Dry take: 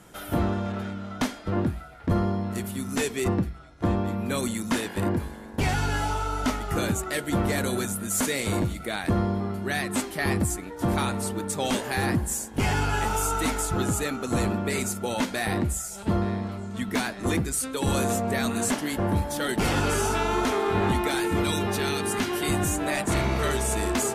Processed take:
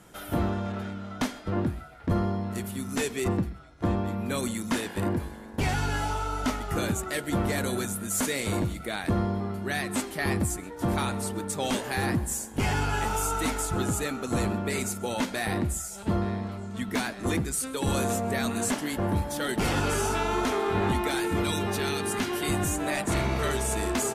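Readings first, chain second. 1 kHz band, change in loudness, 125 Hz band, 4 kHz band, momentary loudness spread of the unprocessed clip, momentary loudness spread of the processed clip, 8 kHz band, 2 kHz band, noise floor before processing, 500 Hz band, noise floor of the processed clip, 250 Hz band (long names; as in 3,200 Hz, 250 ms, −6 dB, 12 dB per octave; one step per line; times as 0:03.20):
−2.0 dB, −2.0 dB, −2.0 dB, −2.0 dB, 5 LU, 5 LU, −2.0 dB, −2.0 dB, −40 dBFS, −2.0 dB, −42 dBFS, −2.0 dB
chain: single-tap delay 131 ms −22.5 dB
level −2 dB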